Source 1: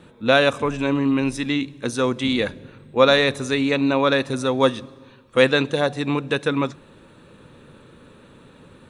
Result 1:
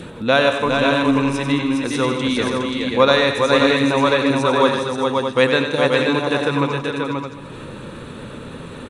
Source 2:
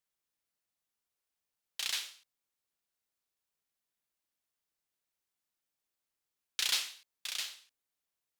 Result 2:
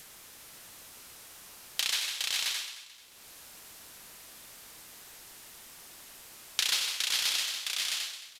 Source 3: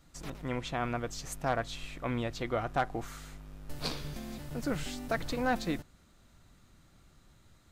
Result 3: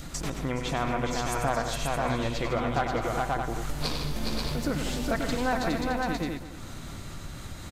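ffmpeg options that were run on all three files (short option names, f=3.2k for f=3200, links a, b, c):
-filter_complex "[0:a]asplit=2[a][b];[b]aecho=0:1:95|154|413|532|617:0.376|0.251|0.562|0.596|0.335[c];[a][c]amix=inputs=2:normalize=0,aresample=32000,aresample=44100,acompressor=mode=upward:threshold=-22dB:ratio=2.5,asplit=2[d][e];[e]aecho=0:1:219|438|657|876:0.188|0.0753|0.0301|0.0121[f];[d][f]amix=inputs=2:normalize=0,adynamicequalizer=threshold=0.0112:dfrequency=990:dqfactor=4.3:tfrequency=990:tqfactor=4.3:attack=5:release=100:ratio=0.375:range=2.5:mode=boostabove:tftype=bell"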